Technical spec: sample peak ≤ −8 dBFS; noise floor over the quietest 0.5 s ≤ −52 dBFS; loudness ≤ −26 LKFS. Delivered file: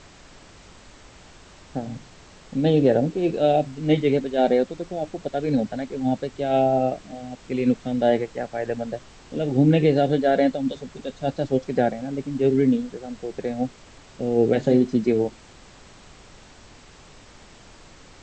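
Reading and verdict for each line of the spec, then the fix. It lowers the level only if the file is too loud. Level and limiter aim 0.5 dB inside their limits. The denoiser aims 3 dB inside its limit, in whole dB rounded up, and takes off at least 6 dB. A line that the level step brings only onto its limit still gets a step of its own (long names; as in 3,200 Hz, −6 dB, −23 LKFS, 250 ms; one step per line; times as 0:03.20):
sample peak −7.0 dBFS: out of spec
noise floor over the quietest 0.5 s −48 dBFS: out of spec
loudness −23.0 LKFS: out of spec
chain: broadband denoise 6 dB, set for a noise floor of −48 dBFS
level −3.5 dB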